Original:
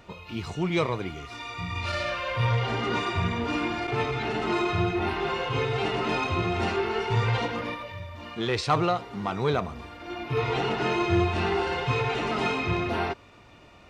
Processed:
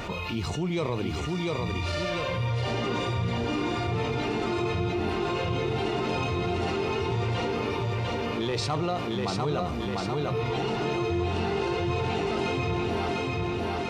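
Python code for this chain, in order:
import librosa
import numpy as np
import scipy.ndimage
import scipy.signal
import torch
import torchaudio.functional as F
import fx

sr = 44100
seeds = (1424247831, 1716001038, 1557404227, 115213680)

p1 = fx.dynamic_eq(x, sr, hz=1600.0, q=0.76, threshold_db=-44.0, ratio=4.0, max_db=-7)
p2 = p1 + fx.echo_feedback(p1, sr, ms=698, feedback_pct=46, wet_db=-4.0, dry=0)
p3 = fx.env_flatten(p2, sr, amount_pct=70)
y = p3 * 10.0 ** (-5.5 / 20.0)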